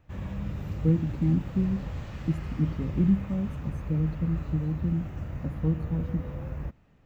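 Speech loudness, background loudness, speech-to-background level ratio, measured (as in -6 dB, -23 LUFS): -29.5 LUFS, -36.5 LUFS, 7.0 dB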